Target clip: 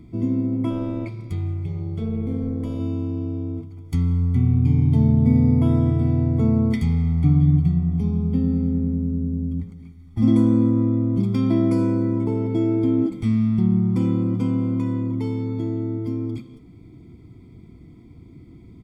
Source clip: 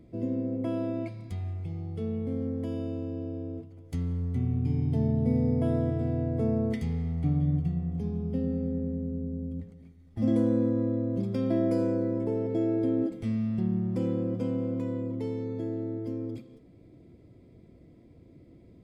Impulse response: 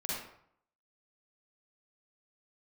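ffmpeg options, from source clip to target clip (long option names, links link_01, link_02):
-filter_complex "[0:a]aecho=1:1:0.9:0.88,asplit=3[link_01][link_02][link_03];[link_01]afade=type=out:start_time=0.69:duration=0.02[link_04];[link_02]tremolo=f=240:d=0.571,afade=type=in:start_time=0.69:duration=0.02,afade=type=out:start_time=2.79:duration=0.02[link_05];[link_03]afade=type=in:start_time=2.79:duration=0.02[link_06];[link_04][link_05][link_06]amix=inputs=3:normalize=0,volume=5.5dB"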